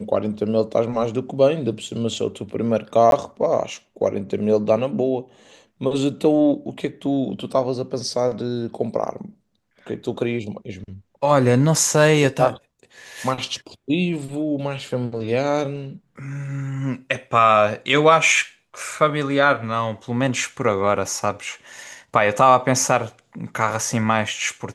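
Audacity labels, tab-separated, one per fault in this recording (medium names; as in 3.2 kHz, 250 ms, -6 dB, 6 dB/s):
3.110000	3.120000	dropout 12 ms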